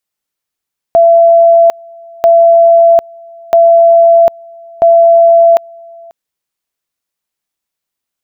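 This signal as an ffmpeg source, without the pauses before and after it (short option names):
-f lavfi -i "aevalsrc='pow(10,(-2-28*gte(mod(t,1.29),0.75))/20)*sin(2*PI*673*t)':d=5.16:s=44100"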